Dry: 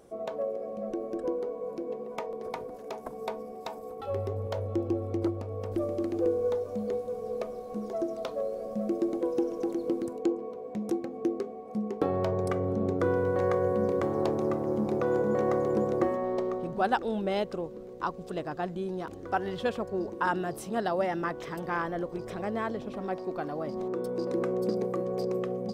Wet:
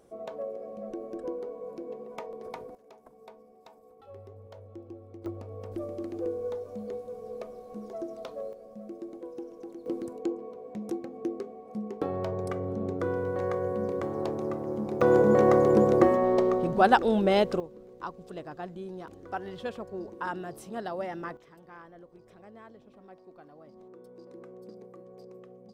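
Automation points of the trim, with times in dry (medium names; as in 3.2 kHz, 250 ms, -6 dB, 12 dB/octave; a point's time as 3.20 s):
-4 dB
from 2.75 s -15.5 dB
from 5.26 s -5.5 dB
from 8.53 s -12 dB
from 9.86 s -3.5 dB
from 15.01 s +6.5 dB
from 17.60 s -6 dB
from 21.37 s -18 dB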